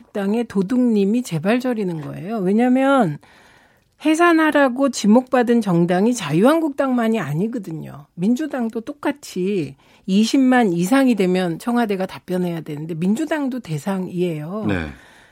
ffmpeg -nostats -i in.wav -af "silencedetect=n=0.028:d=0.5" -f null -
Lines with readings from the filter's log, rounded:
silence_start: 3.16
silence_end: 4.02 | silence_duration: 0.85